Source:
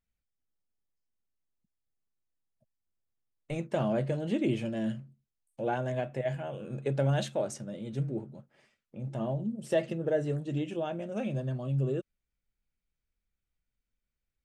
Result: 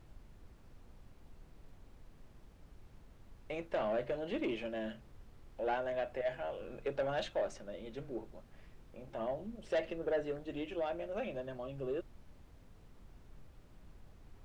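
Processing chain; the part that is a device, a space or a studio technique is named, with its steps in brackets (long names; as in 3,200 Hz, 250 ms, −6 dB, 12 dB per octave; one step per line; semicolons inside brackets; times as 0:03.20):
aircraft cabin announcement (band-pass filter 430–3,500 Hz; soft clipping −27.5 dBFS, distortion −13 dB; brown noise bed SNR 13 dB)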